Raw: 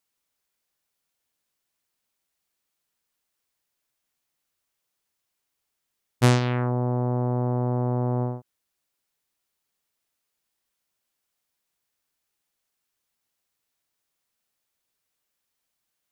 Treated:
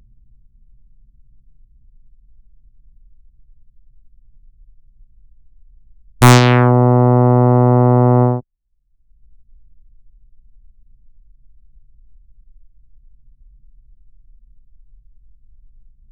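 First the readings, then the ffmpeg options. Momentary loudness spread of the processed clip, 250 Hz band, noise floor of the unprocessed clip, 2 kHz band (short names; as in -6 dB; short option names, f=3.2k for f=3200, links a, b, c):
5 LU, +13.5 dB, -81 dBFS, +14.0 dB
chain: -filter_complex "[0:a]asubboost=boost=3.5:cutoff=53,anlmdn=0.631,equalizer=f=9.7k:t=o:w=0.73:g=8.5,acrossover=split=190|800|1600[a][b][c][d];[a]acompressor=mode=upward:threshold=-30dB:ratio=2.5[e];[e][b][c][d]amix=inputs=4:normalize=0,aeval=exprs='0.562*sin(PI/2*2.51*val(0)/0.562)':c=same,volume=4dB"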